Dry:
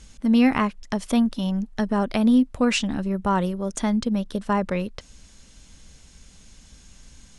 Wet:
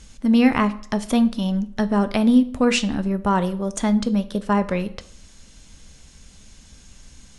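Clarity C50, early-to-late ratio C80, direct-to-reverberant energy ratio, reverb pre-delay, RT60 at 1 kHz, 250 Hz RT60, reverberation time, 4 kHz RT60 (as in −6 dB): 16.5 dB, 20.0 dB, 11.5 dB, 8 ms, 0.60 s, 0.60 s, 0.55 s, 0.45 s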